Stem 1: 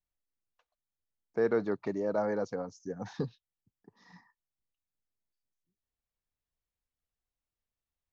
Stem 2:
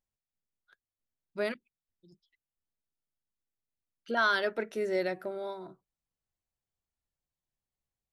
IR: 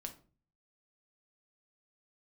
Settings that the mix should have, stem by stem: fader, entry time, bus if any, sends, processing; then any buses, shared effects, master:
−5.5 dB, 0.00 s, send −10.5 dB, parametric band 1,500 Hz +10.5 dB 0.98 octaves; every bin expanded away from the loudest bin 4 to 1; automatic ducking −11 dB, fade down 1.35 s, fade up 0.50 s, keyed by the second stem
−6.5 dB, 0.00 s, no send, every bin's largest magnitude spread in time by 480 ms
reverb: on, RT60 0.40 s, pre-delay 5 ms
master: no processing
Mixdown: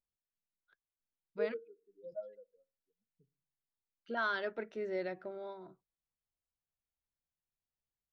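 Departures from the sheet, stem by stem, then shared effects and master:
stem 2: missing every bin's largest magnitude spread in time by 480 ms
master: extra high-frequency loss of the air 170 metres

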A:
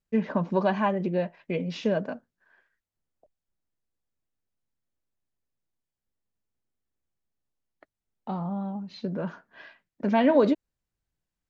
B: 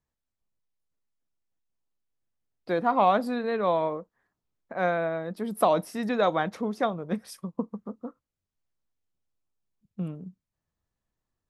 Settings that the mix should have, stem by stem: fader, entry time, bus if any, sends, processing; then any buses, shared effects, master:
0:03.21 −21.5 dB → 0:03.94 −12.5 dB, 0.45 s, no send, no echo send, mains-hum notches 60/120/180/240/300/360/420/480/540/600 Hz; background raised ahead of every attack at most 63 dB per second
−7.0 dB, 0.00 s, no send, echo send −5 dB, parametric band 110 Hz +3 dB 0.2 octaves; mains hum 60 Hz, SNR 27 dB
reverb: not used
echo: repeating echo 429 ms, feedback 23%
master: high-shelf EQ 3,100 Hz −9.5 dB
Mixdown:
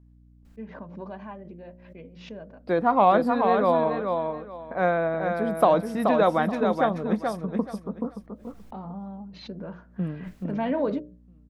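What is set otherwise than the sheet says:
stem A −21.5 dB → −14.5 dB
stem B −7.0 dB → +3.5 dB

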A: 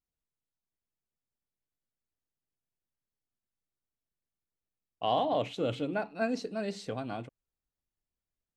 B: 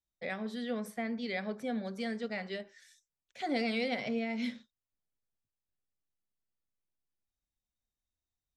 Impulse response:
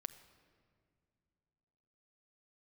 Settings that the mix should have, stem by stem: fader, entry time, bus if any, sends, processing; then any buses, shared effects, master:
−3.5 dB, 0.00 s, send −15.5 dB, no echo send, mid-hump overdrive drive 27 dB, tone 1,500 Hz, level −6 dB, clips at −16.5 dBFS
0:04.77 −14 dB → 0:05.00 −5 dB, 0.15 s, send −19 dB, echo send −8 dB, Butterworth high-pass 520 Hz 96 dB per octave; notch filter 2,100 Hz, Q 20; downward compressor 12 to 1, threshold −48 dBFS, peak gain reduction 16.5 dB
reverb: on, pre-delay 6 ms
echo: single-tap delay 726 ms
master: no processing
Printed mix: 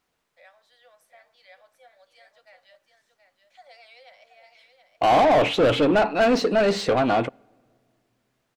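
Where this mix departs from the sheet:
stem A −3.5 dB → +6.0 dB
stem B: missing downward compressor 12 to 1, threshold −48 dBFS, peak gain reduction 16.5 dB

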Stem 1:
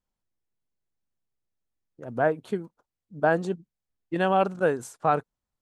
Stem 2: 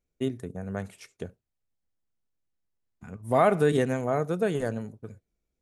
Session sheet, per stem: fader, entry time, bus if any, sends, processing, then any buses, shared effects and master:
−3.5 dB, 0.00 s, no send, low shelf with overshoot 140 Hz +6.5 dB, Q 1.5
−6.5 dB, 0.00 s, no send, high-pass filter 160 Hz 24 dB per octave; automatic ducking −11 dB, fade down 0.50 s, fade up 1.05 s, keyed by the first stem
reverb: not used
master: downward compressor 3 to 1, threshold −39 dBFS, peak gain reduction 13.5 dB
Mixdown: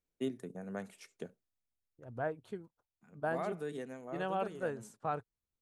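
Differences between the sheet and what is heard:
stem 1 −3.5 dB → −13.0 dB
master: missing downward compressor 3 to 1, threshold −39 dBFS, peak gain reduction 13.5 dB

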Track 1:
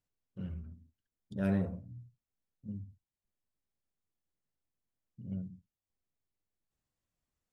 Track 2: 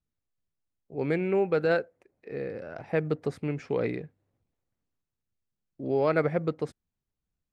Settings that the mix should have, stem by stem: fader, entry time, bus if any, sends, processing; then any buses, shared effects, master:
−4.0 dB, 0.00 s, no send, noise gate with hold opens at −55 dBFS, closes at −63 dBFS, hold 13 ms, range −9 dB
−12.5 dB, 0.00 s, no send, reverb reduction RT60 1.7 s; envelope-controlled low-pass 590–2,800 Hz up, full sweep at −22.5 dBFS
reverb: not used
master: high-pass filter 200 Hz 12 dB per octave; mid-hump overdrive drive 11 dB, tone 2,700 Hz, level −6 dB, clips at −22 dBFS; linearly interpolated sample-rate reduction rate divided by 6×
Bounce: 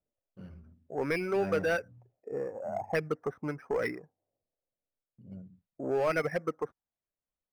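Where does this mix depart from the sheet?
stem 2 −12.5 dB → −2.0 dB
master: missing high-pass filter 200 Hz 12 dB per octave

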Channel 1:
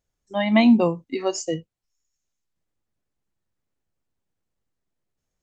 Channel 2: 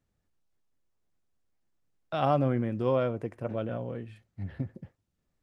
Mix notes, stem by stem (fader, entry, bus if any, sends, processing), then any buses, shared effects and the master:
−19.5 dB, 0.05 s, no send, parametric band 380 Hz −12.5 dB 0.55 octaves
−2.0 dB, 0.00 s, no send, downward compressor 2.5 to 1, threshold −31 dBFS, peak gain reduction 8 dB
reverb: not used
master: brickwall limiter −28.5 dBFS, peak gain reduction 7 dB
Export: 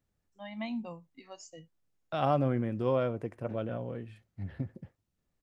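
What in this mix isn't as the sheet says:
stem 2: missing downward compressor 2.5 to 1, threshold −31 dBFS, peak gain reduction 8 dB
master: missing brickwall limiter −28.5 dBFS, peak gain reduction 7 dB

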